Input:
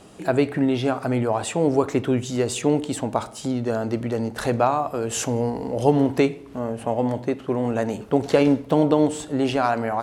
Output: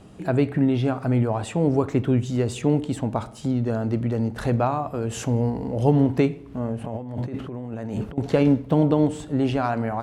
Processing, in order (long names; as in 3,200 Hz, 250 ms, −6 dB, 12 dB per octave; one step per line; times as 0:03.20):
bass and treble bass +10 dB, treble −5 dB
0:06.84–0:08.18: compressor whose output falls as the input rises −27 dBFS, ratio −1
level −4 dB